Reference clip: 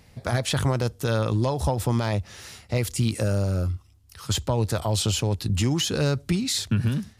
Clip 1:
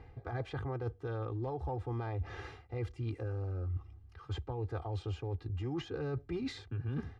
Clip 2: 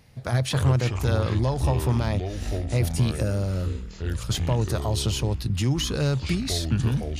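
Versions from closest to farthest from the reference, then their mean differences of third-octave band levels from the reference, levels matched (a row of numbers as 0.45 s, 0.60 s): 2, 1; 5.0 dB, 8.5 dB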